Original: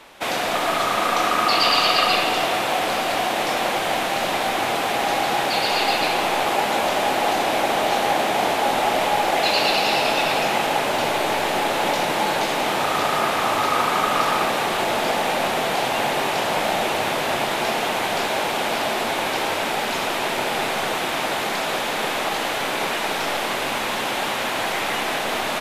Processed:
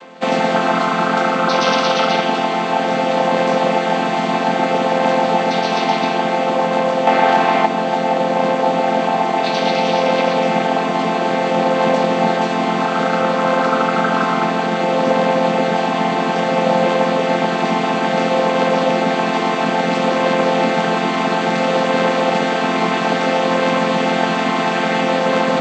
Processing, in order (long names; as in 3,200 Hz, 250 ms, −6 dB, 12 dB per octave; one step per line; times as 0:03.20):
channel vocoder with a chord as carrier major triad, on F3
0:07.07–0:07.66: parametric band 1,600 Hz +8 dB 2.7 octaves
speech leveller within 4 dB 2 s
level +6 dB